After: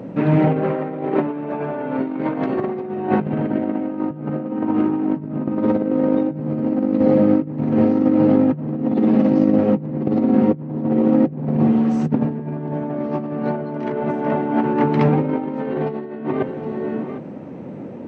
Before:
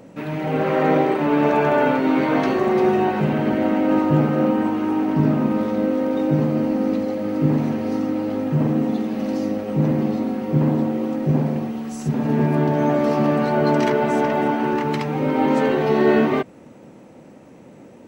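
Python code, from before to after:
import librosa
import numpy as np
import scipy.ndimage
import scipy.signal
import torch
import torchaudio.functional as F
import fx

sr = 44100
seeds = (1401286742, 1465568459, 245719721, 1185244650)

y = fx.low_shelf(x, sr, hz=350.0, db=5.5)
y = y + 10.0 ** (-20.5 / 20.0) * np.pad(y, (int(762 * sr / 1000.0), 0))[:len(y)]
y = fx.over_compress(y, sr, threshold_db=-21.0, ratio=-0.5)
y = scipy.signal.sosfilt(scipy.signal.butter(2, 110.0, 'highpass', fs=sr, output='sos'), y)
y = fx.spacing_loss(y, sr, db_at_10k=30)
y = y * 10.0 ** (4.0 / 20.0)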